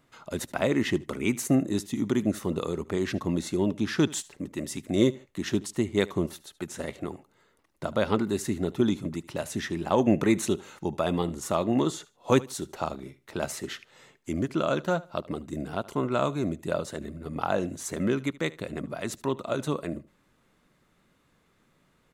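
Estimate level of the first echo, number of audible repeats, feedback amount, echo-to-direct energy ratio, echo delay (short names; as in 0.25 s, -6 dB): -20.5 dB, 2, 23%, -20.5 dB, 75 ms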